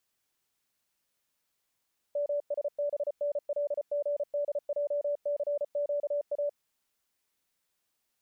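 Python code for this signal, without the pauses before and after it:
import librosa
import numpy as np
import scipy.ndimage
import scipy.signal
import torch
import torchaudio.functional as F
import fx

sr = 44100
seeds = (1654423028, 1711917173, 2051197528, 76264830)

y = fx.morse(sr, text='MSBNLGDJCQA', wpm=34, hz=580.0, level_db=-27.0)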